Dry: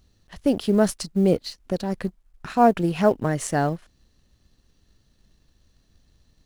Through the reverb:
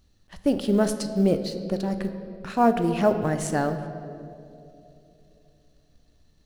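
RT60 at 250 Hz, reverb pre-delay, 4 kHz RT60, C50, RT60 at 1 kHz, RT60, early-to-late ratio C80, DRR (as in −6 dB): 3.4 s, 3 ms, 1.5 s, 9.5 dB, 2.3 s, 2.9 s, 10.5 dB, 8.0 dB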